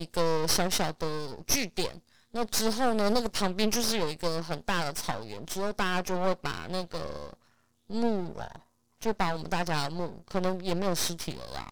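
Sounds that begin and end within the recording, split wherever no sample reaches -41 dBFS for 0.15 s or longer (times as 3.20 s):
2.34–7.34 s
7.90–8.59 s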